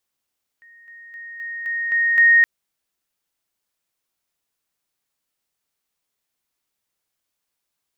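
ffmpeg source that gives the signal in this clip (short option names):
-f lavfi -i "aevalsrc='pow(10,(-45.5+6*floor(t/0.26))/20)*sin(2*PI*1860*t)':d=1.82:s=44100"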